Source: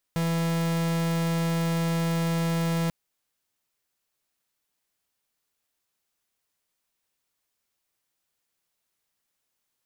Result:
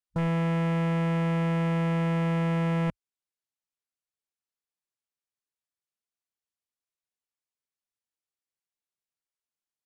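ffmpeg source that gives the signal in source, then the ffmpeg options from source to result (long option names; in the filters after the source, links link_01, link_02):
-f lavfi -i "aevalsrc='0.0531*(2*lt(mod(166*t,1),0.44)-1)':duration=2.74:sample_rate=44100"
-af "lowpass=frequency=11000:width=0.5412,lowpass=frequency=11000:width=1.3066,afwtdn=0.01"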